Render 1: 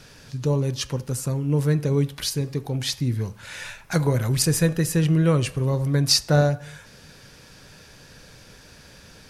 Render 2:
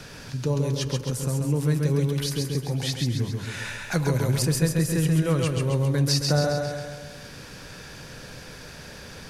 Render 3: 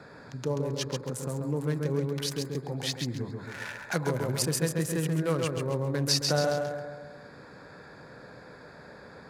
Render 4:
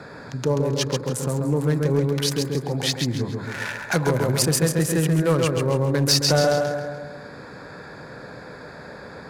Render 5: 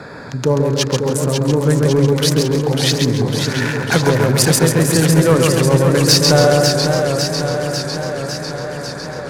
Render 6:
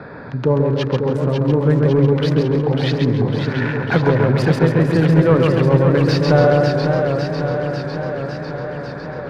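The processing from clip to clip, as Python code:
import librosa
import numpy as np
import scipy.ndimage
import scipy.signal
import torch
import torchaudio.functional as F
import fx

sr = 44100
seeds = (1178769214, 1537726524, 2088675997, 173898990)

y1 = fx.echo_feedback(x, sr, ms=134, feedback_pct=48, wet_db=-4)
y1 = fx.band_squash(y1, sr, depth_pct=40)
y1 = y1 * librosa.db_to_amplitude(-3.5)
y2 = fx.wiener(y1, sr, points=15)
y2 = fx.highpass(y2, sr, hz=350.0, slope=6)
y3 = fx.fold_sine(y2, sr, drive_db=5, ceiling_db=-11.5)
y3 = y3 + 10.0 ** (-18.5 / 20.0) * np.pad(y3, (int(296 * sr / 1000.0), 0))[:len(y3)]
y4 = fx.echo_warbled(y3, sr, ms=550, feedback_pct=69, rate_hz=2.8, cents=110, wet_db=-6.0)
y4 = y4 * librosa.db_to_amplitude(6.5)
y5 = fx.air_absorb(y4, sr, metres=370.0)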